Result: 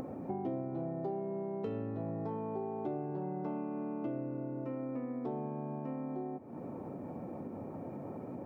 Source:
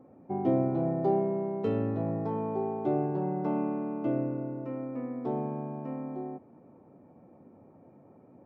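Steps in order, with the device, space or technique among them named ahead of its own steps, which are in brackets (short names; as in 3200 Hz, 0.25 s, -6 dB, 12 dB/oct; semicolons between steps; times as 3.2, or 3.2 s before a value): upward and downward compression (upward compressor, threshold -41 dBFS; compressor 5:1, threshold -44 dBFS, peak gain reduction 19 dB); gain +7 dB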